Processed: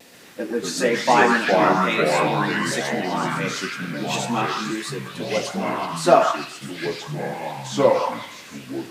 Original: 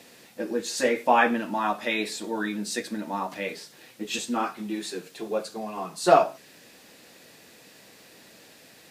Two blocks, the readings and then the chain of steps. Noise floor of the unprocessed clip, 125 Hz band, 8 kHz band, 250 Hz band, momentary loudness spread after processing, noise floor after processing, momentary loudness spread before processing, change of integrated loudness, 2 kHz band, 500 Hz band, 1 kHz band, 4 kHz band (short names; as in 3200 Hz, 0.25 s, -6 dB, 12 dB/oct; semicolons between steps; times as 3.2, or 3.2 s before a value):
-53 dBFS, +14.5 dB, +5.0 dB, +6.5 dB, 14 LU, -42 dBFS, 15 LU, +5.5 dB, +7.5 dB, +6.5 dB, +6.0 dB, +7.0 dB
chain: delay with a stepping band-pass 0.128 s, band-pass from 1400 Hz, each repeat 0.7 oct, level -0.5 dB; echoes that change speed 0.134 s, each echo -4 st, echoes 2; vibrato 1.1 Hz 32 cents; gain +3 dB